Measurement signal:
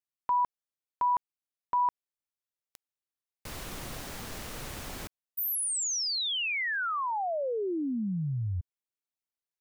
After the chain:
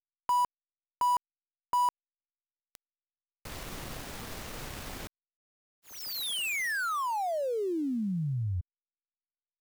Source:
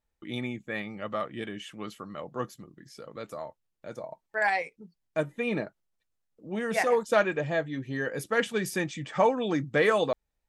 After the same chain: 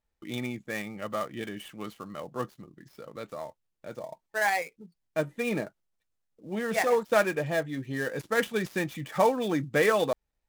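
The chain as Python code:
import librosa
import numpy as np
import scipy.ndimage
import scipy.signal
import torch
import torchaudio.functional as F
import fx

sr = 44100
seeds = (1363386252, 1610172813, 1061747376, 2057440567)

y = fx.dead_time(x, sr, dead_ms=0.069)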